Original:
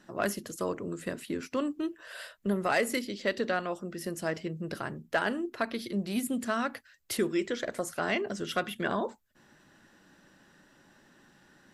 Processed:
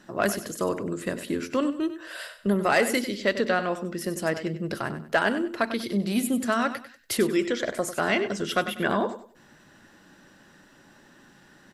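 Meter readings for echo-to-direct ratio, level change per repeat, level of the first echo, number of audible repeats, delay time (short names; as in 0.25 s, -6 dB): -11.0 dB, -11.0 dB, -11.5 dB, 3, 96 ms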